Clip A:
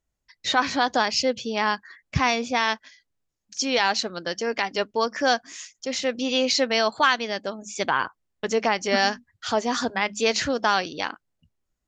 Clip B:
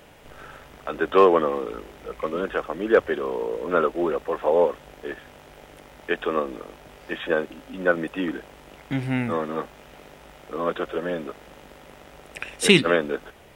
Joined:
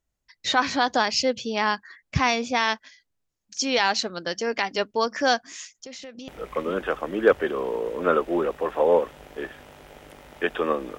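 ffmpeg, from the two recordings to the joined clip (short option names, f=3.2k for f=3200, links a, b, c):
-filter_complex "[0:a]asettb=1/sr,asplit=3[a][b][c];[a]atrim=end=5.654[d];[b]atrim=start=5.65:end=6.28,asetpts=PTS-STARTPTS,afade=t=in:d=0.004:c=qsin,afade=t=out:st=0.626:d=0.004:c=qsin,acompressor=threshold=-36dB:ratio=12:attack=3.2:release=140:knee=1:detection=peak[e];[c]atrim=start=6.276[f];[d][e]acrossfade=d=0.004:c1=hsin:c2=qsin[g];[g][f]acrossfade=d=0.004:c1=qsin:c2=hsin,apad=whole_dur=10.98,atrim=end=10.98,atrim=end=6.282[h];[1:a]atrim=start=1.948:end=6.65[i];[h][i]acrossfade=d=0.004:c1=hsin:c2=hsin"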